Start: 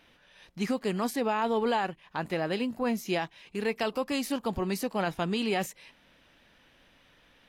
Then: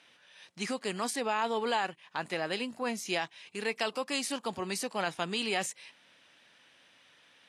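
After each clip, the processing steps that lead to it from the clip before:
elliptic band-pass filter 100–9,300 Hz, stop band 50 dB
spectral tilt +2.5 dB per octave
level −1.5 dB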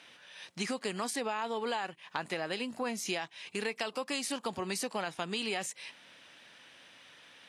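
downward compressor 4 to 1, threshold −38 dBFS, peak gain reduction 11 dB
level +5.5 dB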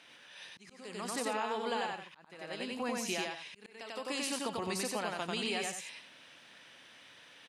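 loudspeakers that aren't time-aligned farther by 32 metres −2 dB, 60 metres −11 dB
volume swells 530 ms
level −2.5 dB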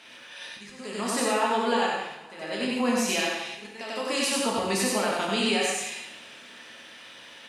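convolution reverb, pre-delay 3 ms, DRR −1 dB
level +6.5 dB

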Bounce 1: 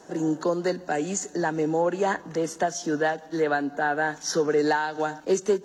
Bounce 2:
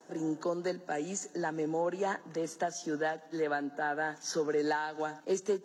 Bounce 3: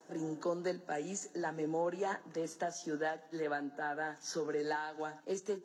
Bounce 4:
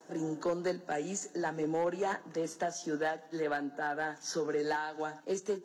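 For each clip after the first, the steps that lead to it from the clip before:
noise gate with hold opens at −43 dBFS; high-pass filter 130 Hz; level −8 dB
speech leveller 2 s; flanger 0.55 Hz, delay 5.9 ms, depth 6.6 ms, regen −71%
gain into a clipping stage and back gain 28.5 dB; level +3.5 dB

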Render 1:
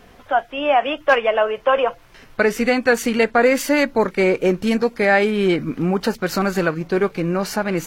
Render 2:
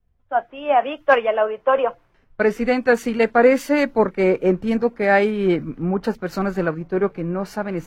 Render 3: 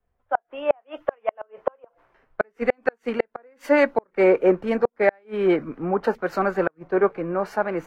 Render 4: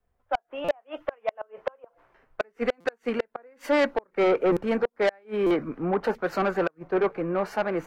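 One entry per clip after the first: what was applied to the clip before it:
high-shelf EQ 2,400 Hz −11.5 dB; multiband upward and downward expander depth 100%
three-way crossover with the lows and the highs turned down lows −14 dB, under 370 Hz, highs −12 dB, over 2,200 Hz; gate with flip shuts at −11 dBFS, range −41 dB; level +4.5 dB
soft clipping −17 dBFS, distortion −11 dB; buffer that repeats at 0:00.64/0:02.80/0:04.52/0:05.46, samples 256, times 7

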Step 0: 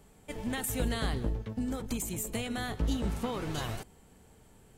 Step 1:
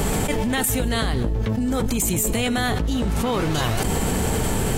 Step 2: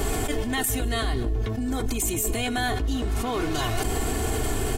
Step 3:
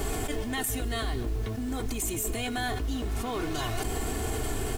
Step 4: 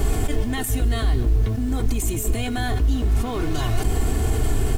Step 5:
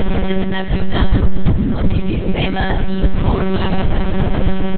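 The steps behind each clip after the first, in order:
envelope flattener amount 100%; level +4 dB
comb filter 2.8 ms, depth 71%; level −5.5 dB
background noise pink −45 dBFS; level −5 dB
low-shelf EQ 210 Hz +11 dB; level +2.5 dB
single-tap delay 407 ms −16 dB; convolution reverb RT60 1.0 s, pre-delay 108 ms, DRR 8.5 dB; one-pitch LPC vocoder at 8 kHz 190 Hz; level +6.5 dB

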